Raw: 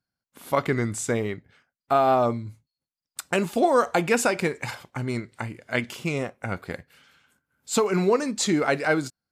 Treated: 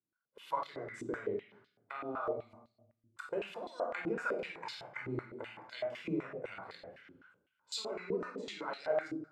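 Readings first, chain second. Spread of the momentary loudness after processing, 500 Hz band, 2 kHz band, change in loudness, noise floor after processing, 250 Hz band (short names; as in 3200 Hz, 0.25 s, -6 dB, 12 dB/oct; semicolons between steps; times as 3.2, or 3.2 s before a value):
12 LU, -13.5 dB, -14.5 dB, -15.0 dB, -84 dBFS, -16.0 dB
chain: compressor 4:1, threshold -30 dBFS, peak gain reduction 13 dB; shoebox room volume 2100 m³, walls furnished, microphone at 4.9 m; flange 0.51 Hz, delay 3.4 ms, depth 3.8 ms, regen -84%; stepped band-pass 7.9 Hz 320–4100 Hz; gain +4 dB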